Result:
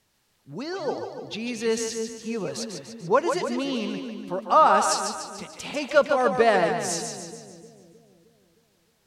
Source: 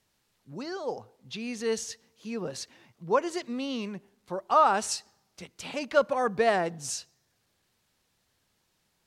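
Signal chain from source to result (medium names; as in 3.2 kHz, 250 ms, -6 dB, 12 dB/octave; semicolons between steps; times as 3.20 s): two-band feedback delay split 410 Hz, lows 310 ms, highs 146 ms, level -6 dB; trim +4 dB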